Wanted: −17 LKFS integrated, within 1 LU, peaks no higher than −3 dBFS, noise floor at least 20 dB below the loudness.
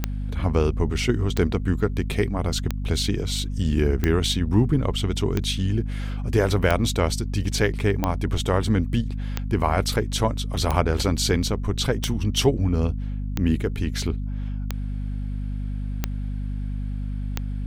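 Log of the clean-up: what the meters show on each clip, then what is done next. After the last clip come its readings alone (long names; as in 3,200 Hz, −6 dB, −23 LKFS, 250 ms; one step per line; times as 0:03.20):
number of clicks 14; mains hum 50 Hz; hum harmonics up to 250 Hz; level of the hum −25 dBFS; integrated loudness −24.5 LKFS; sample peak −5.5 dBFS; target loudness −17.0 LKFS
→ click removal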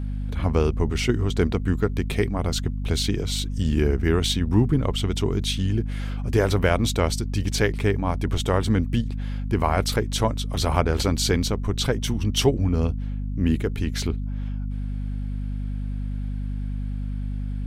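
number of clicks 0; mains hum 50 Hz; hum harmonics up to 250 Hz; level of the hum −25 dBFS
→ hum removal 50 Hz, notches 5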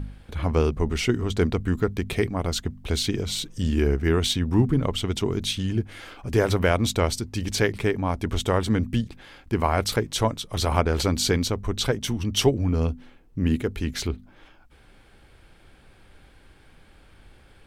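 mains hum none found; integrated loudness −25.0 LKFS; sample peak −6.0 dBFS; target loudness −17.0 LKFS
→ level +8 dB
brickwall limiter −3 dBFS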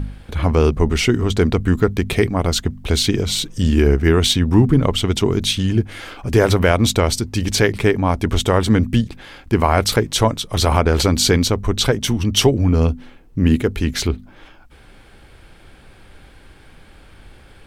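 integrated loudness −17.5 LKFS; sample peak −3.0 dBFS; background noise floor −46 dBFS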